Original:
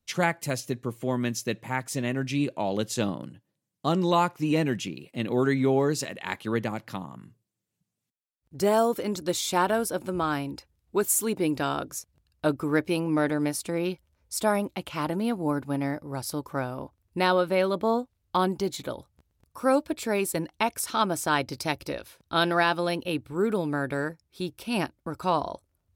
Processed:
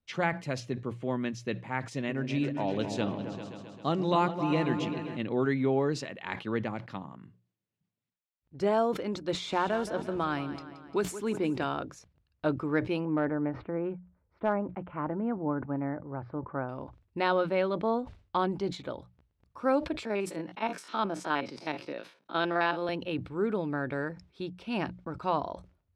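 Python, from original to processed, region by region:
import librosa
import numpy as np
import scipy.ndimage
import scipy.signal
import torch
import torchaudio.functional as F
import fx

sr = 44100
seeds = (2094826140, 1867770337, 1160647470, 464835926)

y = fx.chain(x, sr, fx.high_shelf(hz=4000.0, db=5.0),
    fx.echo_opening(ms=132, hz=400, octaves=2, feedback_pct=70, wet_db=-6), at=(1.91, 5.17))
y = fx.chain(y, sr, fx.echo_feedback(ms=174, feedback_pct=46, wet_db=-14),
    fx.band_squash(depth_pct=40), at=(9.34, 11.64))
y = fx.chain(y, sr, fx.lowpass(hz=1700.0, slope=24),
    fx.clip_hard(threshold_db=-14.5), at=(13.05, 16.69))
y = fx.chain(y, sr, fx.spec_steps(hold_ms=50),
    fx.highpass(hz=180.0, slope=24), at=(20.05, 22.89))
y = scipy.signal.sosfilt(scipy.signal.butter(2, 3400.0, 'lowpass', fs=sr, output='sos'), y)
y = fx.hum_notches(y, sr, base_hz=60, count=3)
y = fx.sustainer(y, sr, db_per_s=140.0)
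y = y * 10.0 ** (-4.0 / 20.0)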